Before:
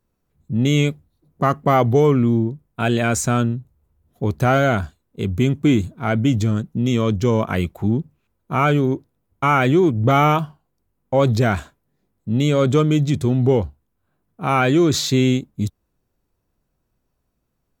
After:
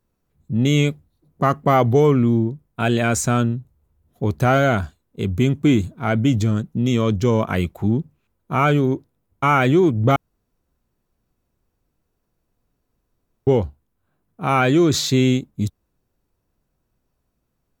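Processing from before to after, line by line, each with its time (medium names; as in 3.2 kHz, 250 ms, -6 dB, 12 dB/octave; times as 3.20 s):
10.16–13.47 s: room tone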